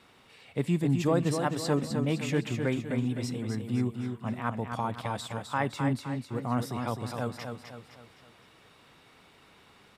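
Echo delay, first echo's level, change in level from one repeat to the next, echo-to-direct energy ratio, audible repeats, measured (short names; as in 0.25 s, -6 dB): 0.257 s, -6.0 dB, -7.0 dB, -5.0 dB, 4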